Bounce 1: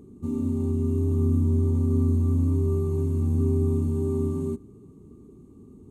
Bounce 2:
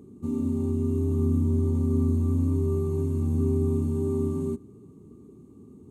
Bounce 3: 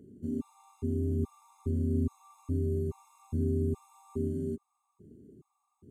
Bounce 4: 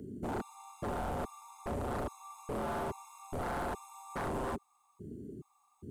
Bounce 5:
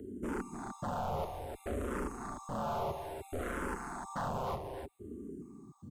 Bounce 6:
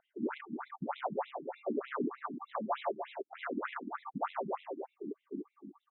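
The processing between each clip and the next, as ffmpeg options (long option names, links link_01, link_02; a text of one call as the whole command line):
ffmpeg -i in.wav -af "highpass=81" out.wav
ffmpeg -i in.wav -af "afftfilt=real='re*gt(sin(2*PI*1.2*pts/sr)*(1-2*mod(floor(b*sr/1024/690),2)),0)':imag='im*gt(sin(2*PI*1.2*pts/sr)*(1-2*mod(floor(b*sr/1024/690),2)),0)':win_size=1024:overlap=0.75,volume=-5dB" out.wav
ffmpeg -i in.wav -filter_complex "[0:a]acrossover=split=330|1200|2900[link_01][link_02][link_03][link_04];[link_01]acompressor=threshold=-39dB:ratio=6[link_05];[link_05][link_02][link_03][link_04]amix=inputs=4:normalize=0,aeval=exprs='0.0112*(abs(mod(val(0)/0.0112+3,4)-2)-1)':channel_layout=same,volume=8dB" out.wav
ffmpeg -i in.wav -filter_complex "[0:a]aecho=1:1:300:0.473,asplit=2[link_01][link_02];[link_02]afreqshift=-0.6[link_03];[link_01][link_03]amix=inputs=2:normalize=1,volume=2.5dB" out.wav
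ffmpeg -i in.wav -af "asoftclip=type=hard:threshold=-32dB,afftfilt=real='re*between(b*sr/1024,240*pow(2900/240,0.5+0.5*sin(2*PI*3.3*pts/sr))/1.41,240*pow(2900/240,0.5+0.5*sin(2*PI*3.3*pts/sr))*1.41)':imag='im*between(b*sr/1024,240*pow(2900/240,0.5+0.5*sin(2*PI*3.3*pts/sr))/1.41,240*pow(2900/240,0.5+0.5*sin(2*PI*3.3*pts/sr))*1.41)':win_size=1024:overlap=0.75,volume=8.5dB" out.wav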